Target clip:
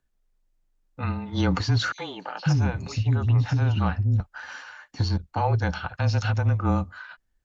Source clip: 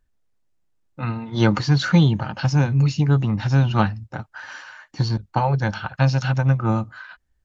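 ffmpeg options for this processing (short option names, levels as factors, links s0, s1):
-filter_complex "[0:a]alimiter=limit=0.266:level=0:latency=1:release=42,asettb=1/sr,asplit=3[s0][s1][s2];[s0]atrim=end=1.924[s3];[s1]atrim=start=1.92:end=4.2,asetpts=PTS-STARTPTS,afade=t=in:d=0.004:c=qsin,afade=t=out:st=2.276:d=0.004:c=qsin,acrossover=split=370|4000[s4][s5][s6];[s5]adelay=60[s7];[s4]adelay=530[s8];[s8][s7][s6]amix=inputs=3:normalize=0,atrim=end_sample=100548[s9];[s2]atrim=start=4.196[s10];[s3][s9]acrossfade=d=0.004:c1=hsin:c2=qsin[s11];[s11][s10]acrossfade=d=0.004:c1=qsin:c2=hsin,afreqshift=-23,volume=0.794"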